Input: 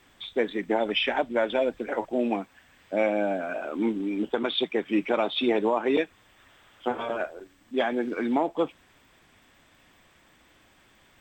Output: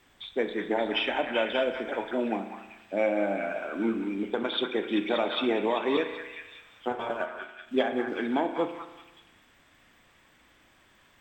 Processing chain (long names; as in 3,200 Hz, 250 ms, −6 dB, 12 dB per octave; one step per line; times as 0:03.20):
0:06.91–0:08.10: transient designer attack +5 dB, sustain −8 dB
echo through a band-pass that steps 193 ms, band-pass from 1,400 Hz, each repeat 0.7 octaves, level −2 dB
spring reverb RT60 1.1 s, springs 35 ms, chirp 45 ms, DRR 8.5 dB
level −3 dB